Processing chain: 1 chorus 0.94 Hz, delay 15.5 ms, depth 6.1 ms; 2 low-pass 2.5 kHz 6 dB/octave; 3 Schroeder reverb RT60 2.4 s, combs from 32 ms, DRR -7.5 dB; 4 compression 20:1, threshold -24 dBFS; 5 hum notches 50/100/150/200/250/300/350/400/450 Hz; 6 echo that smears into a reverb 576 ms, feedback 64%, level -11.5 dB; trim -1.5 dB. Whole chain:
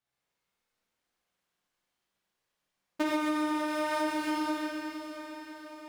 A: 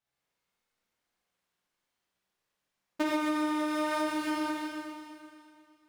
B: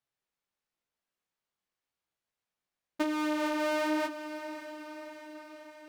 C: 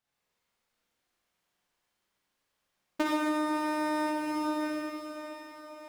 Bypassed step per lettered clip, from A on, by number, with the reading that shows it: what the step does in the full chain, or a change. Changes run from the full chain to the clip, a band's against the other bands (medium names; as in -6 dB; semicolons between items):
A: 6, momentary loudness spread change +2 LU; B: 3, momentary loudness spread change +4 LU; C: 1, 4 kHz band -2.0 dB